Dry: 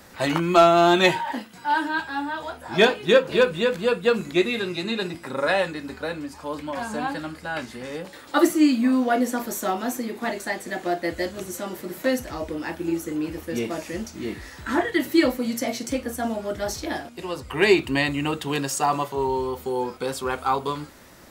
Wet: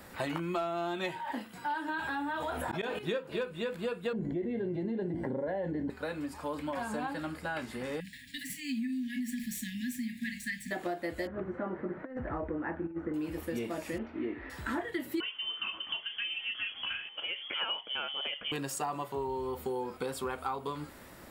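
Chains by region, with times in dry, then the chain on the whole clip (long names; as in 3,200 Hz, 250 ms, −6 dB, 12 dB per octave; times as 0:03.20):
0:01.88–0:02.99: parametric band 4,800 Hz −8.5 dB 0.2 octaves + volume swells 176 ms + envelope flattener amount 70%
0:04.13–0:05.90: moving average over 35 samples + envelope flattener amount 70%
0:08.00–0:10.71: running median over 3 samples + downward compressor 4 to 1, threshold −20 dBFS + linear-phase brick-wall band-stop 270–1,600 Hz
0:11.27–0:13.14: Chebyshev low-pass filter 1,700 Hz, order 3 + compressor whose output falls as the input rises −29 dBFS, ratio −0.5
0:13.98–0:14.50: inverse Chebyshev low-pass filter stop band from 12,000 Hz, stop band 80 dB + low shelf with overshoot 220 Hz −6 dB, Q 3
0:15.20–0:18.52: voice inversion scrambler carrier 3,300 Hz + low-shelf EQ 190 Hz −11.5 dB
whole clip: notch filter 6,200 Hz, Q 12; downward compressor 6 to 1, threshold −30 dBFS; parametric band 5,300 Hz −5 dB 1.1 octaves; level −2 dB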